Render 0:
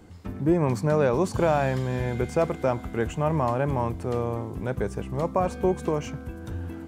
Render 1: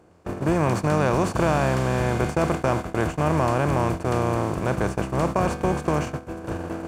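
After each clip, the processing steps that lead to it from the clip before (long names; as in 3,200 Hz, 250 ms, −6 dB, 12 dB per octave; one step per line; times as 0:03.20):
compressor on every frequency bin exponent 0.4
noise gate −21 dBFS, range −27 dB
dynamic equaliser 440 Hz, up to −6 dB, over −29 dBFS, Q 0.96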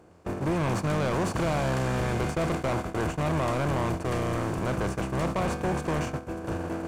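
soft clipping −22.5 dBFS, distortion −8 dB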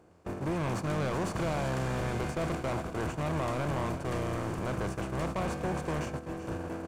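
single-tap delay 383 ms −12 dB
level −5 dB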